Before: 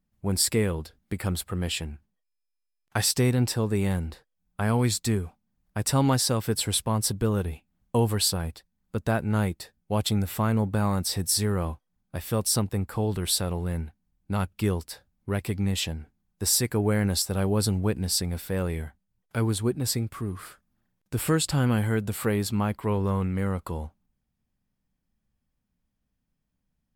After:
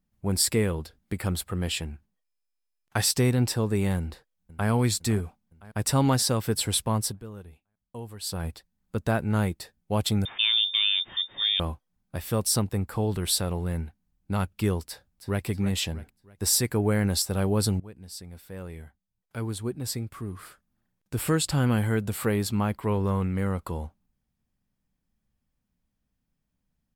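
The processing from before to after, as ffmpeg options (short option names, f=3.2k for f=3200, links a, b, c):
-filter_complex "[0:a]asplit=2[a][b];[b]afade=t=in:st=3.98:d=0.01,afade=t=out:st=4.69:d=0.01,aecho=0:1:510|1020|1530|2040|2550|3060:0.141254|0.0847523|0.0508514|0.0305108|0.0183065|0.0109839[c];[a][c]amix=inputs=2:normalize=0,asettb=1/sr,asplit=3[d][e][f];[d]atrim=end=10.254[g];[e]atrim=start=10.25:end=11.6,asetpts=PTS-STARTPTS,afade=t=in:d=0.004:c=qsin,afade=t=out:st=1.346:d=0.004:c=qsin,lowpass=f=3.1k:t=q:w=0.5098,lowpass=f=3.1k:t=q:w=0.6013,lowpass=f=3.1k:t=q:w=0.9,lowpass=f=3.1k:t=q:w=2.563,afreqshift=-3700[h];[f]atrim=start=11.596[i];[g][h]acrossfade=d=0.004:c1=hsin:c2=qsin[j];[j][i]acrossfade=d=0.004:c1=qsin:c2=hsin,asplit=2[k][l];[l]afade=t=in:st=14.85:d=0.01,afade=t=out:st=15.45:d=0.01,aecho=0:1:320|640|960|1280:0.298538|0.119415|0.0477661|0.0191064[m];[k][m]amix=inputs=2:normalize=0,asplit=4[n][o][p][q];[n]atrim=end=7.22,asetpts=PTS-STARTPTS,afade=t=out:st=6.97:d=0.25:silence=0.158489[r];[o]atrim=start=7.22:end=8.21,asetpts=PTS-STARTPTS,volume=-16dB[s];[p]atrim=start=8.21:end=17.8,asetpts=PTS-STARTPTS,afade=t=in:d=0.25:silence=0.158489,afade=t=out:st=9.586:d=0.004:c=hsin:silence=0.0944061[t];[q]atrim=start=17.8,asetpts=PTS-STARTPTS,afade=t=in:d=3.89:silence=0.0944061[u];[r][s][t][u]concat=n=4:v=0:a=1"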